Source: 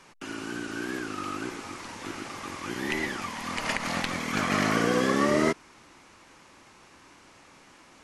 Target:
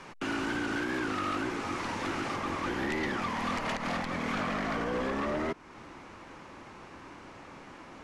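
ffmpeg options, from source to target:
ffmpeg -i in.wav -af "asetnsamples=nb_out_samples=441:pad=0,asendcmd='2.36 lowpass f 1400',lowpass=frequency=2400:poles=1,alimiter=level_in=2dB:limit=-24dB:level=0:latency=1:release=324,volume=-2dB,aeval=exprs='0.0501*sin(PI/2*2*val(0)/0.0501)':channel_layout=same,volume=-1.5dB" out.wav

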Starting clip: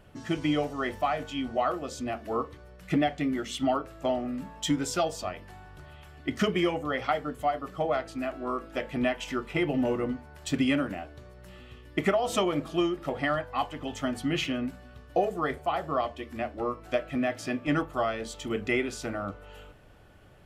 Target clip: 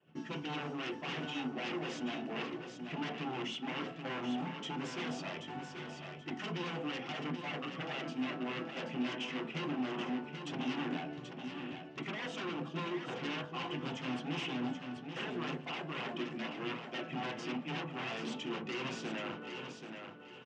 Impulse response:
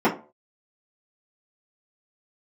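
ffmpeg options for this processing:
-filter_complex "[0:a]agate=range=-33dB:threshold=-46dB:ratio=3:detection=peak,areverse,acompressor=threshold=-33dB:ratio=6,areverse,aphaser=in_gain=1:out_gain=1:delay=3.2:decay=0.29:speed=1.8:type=sinusoidal,aeval=exprs='0.0158*(abs(mod(val(0)/0.0158+3,4)-2)-1)':channel_layout=same,highpass=frequency=140:width=0.5412,highpass=frequency=140:width=1.3066,equalizer=frequency=600:width_type=q:width=4:gain=-7,equalizer=frequency=2800:width_type=q:width=4:gain=9,equalizer=frequency=4300:width_type=q:width=4:gain=-6,lowpass=frequency=5700:width=0.5412,lowpass=frequency=5700:width=1.3066,aecho=1:1:781|1562|2343:0.447|0.121|0.0326,asplit=2[link_01][link_02];[1:a]atrim=start_sample=2205,asetrate=32634,aresample=44100[link_03];[link_02][link_03]afir=irnorm=-1:irlink=0,volume=-22.5dB[link_04];[link_01][link_04]amix=inputs=2:normalize=0,volume=-2dB"

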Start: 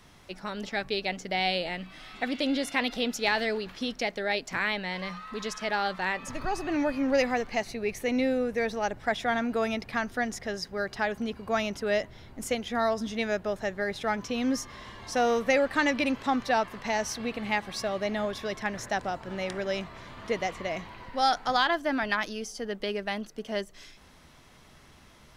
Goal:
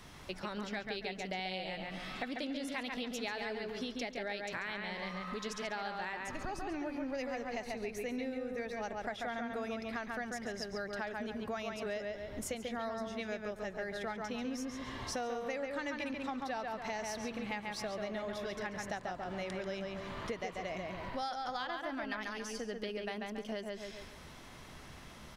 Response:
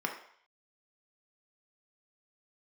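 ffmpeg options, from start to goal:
-filter_complex "[0:a]asplit=2[link_01][link_02];[link_02]adelay=139,lowpass=frequency=3300:poles=1,volume=-3.5dB,asplit=2[link_03][link_04];[link_04]adelay=139,lowpass=frequency=3300:poles=1,volume=0.35,asplit=2[link_05][link_06];[link_06]adelay=139,lowpass=frequency=3300:poles=1,volume=0.35,asplit=2[link_07][link_08];[link_08]adelay=139,lowpass=frequency=3300:poles=1,volume=0.35,asplit=2[link_09][link_10];[link_10]adelay=139,lowpass=frequency=3300:poles=1,volume=0.35[link_11];[link_01][link_03][link_05][link_07][link_09][link_11]amix=inputs=6:normalize=0,acompressor=threshold=-40dB:ratio=5,volume=2dB"

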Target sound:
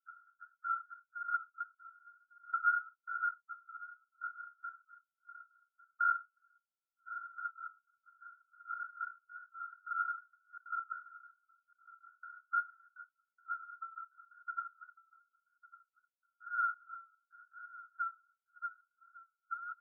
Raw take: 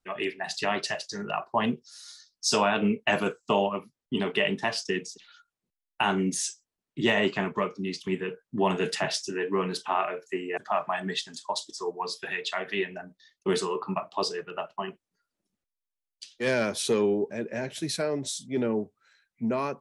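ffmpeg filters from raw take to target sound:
ffmpeg -i in.wav -af "asuperpass=centerf=1300:order=12:qfactor=5,aecho=1:1:1152:0.112,afftfilt=real='re*eq(mod(floor(b*sr/1024/1300),2),1)':imag='im*eq(mod(floor(b*sr/1024/1300),2),1)':win_size=1024:overlap=0.75,volume=7.5dB" out.wav

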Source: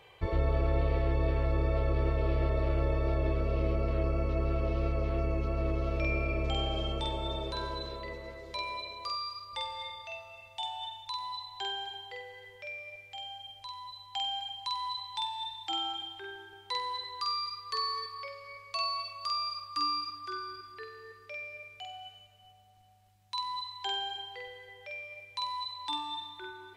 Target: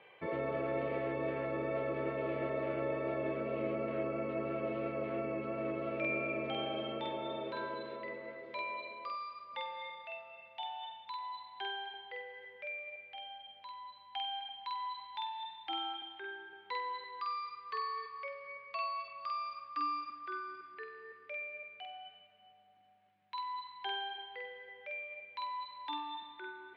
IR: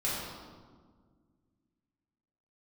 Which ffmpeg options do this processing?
-af "highpass=frequency=160:width=0.5412,highpass=frequency=160:width=1.3066,equalizer=frequency=240:width_type=q:width=4:gain=5,equalizer=frequency=560:width_type=q:width=4:gain=4,equalizer=frequency=1600:width_type=q:width=4:gain=4,equalizer=frequency=2200:width_type=q:width=4:gain=4,lowpass=frequency=3100:width=0.5412,lowpass=frequency=3100:width=1.3066,volume=-3.5dB"

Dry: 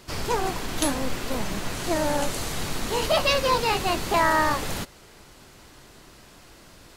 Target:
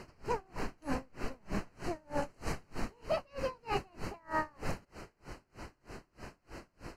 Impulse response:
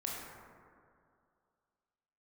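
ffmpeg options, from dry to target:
-af "aemphasis=mode=reproduction:type=75kf,areverse,acompressor=threshold=-35dB:ratio=6,areverse,asuperstop=centerf=3500:order=4:qfactor=3,aeval=exprs='val(0)*pow(10,-34*(0.5-0.5*cos(2*PI*3.2*n/s))/20)':channel_layout=same,volume=7dB"

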